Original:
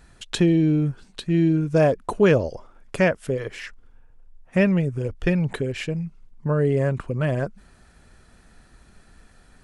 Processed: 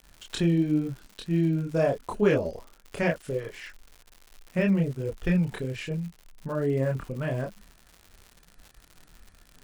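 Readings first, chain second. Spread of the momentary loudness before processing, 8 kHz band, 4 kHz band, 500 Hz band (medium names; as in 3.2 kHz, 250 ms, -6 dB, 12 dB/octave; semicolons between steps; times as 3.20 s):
14 LU, -5.5 dB, -5.5 dB, -5.5 dB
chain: chorus voices 6, 0.84 Hz, delay 27 ms, depth 3.6 ms; expander -49 dBFS; crackle 150 per s -35 dBFS; trim -3 dB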